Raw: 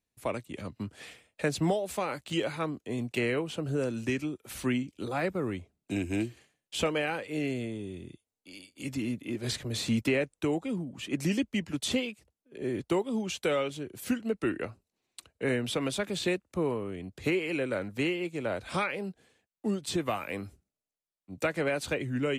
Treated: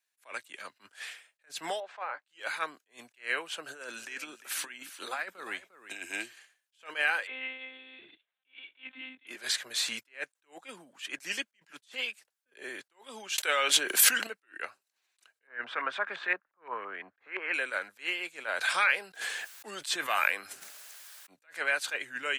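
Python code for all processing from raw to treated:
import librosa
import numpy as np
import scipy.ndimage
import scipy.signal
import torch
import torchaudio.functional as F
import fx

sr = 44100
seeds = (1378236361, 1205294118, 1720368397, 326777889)

y = fx.chain(x, sr, fx.bandpass_q(hz=800.0, q=1.1),
    fx.air_absorb(metres=150.0),
    fx.band_squash(depth_pct=40), at=(1.8, 2.25))
y = fx.chain(y, sr, fx.peak_eq(hz=130.0, db=-4.0, octaves=0.4),
    fx.over_compress(threshold_db=-33.0, ratio=-0.5),
    fx.echo_single(ms=351, db=-14.0), at=(3.64, 6.12))
y = fx.chain(y, sr, fx.lpc_monotone(seeds[0], pitch_hz=260.0, order=10),
    fx.band_squash(depth_pct=40), at=(7.27, 9.27))
y = fx.chain(y, sr, fx.highpass(hz=180.0, slope=12),
    fx.env_flatten(amount_pct=100), at=(13.38, 14.27))
y = fx.chain(y, sr, fx.filter_lfo_lowpass(shape='saw_up', hz=5.8, low_hz=970.0, high_hz=2000.0, q=2.3),
    fx.band_squash(depth_pct=40), at=(15.47, 17.54))
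y = fx.chain(y, sr, fx.highpass(hz=63.0, slope=12),
    fx.sustainer(db_per_s=26.0), at=(18.46, 21.36))
y = scipy.signal.sosfilt(scipy.signal.butter(2, 1100.0, 'highpass', fs=sr, output='sos'), y)
y = fx.peak_eq(y, sr, hz=1600.0, db=8.0, octaves=0.25)
y = fx.attack_slew(y, sr, db_per_s=260.0)
y = y * librosa.db_to_amplitude(5.0)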